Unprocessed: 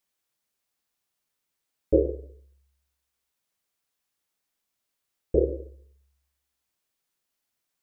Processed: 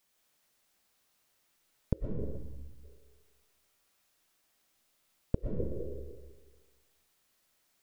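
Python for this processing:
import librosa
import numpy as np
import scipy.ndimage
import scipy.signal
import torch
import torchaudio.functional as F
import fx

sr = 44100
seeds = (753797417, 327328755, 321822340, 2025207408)

y = fx.gate_flip(x, sr, shuts_db=-19.0, range_db=-41)
y = fx.rev_freeverb(y, sr, rt60_s=1.4, hf_ratio=0.65, predelay_ms=80, drr_db=0.0)
y = fx.spec_erase(y, sr, start_s=2.37, length_s=0.47, low_hz=320.0, high_hz=760.0)
y = fx.echo_heads(y, sr, ms=62, heads='second and third', feedback_pct=40, wet_db=-16.5)
y = y * librosa.db_to_amplitude(6.0)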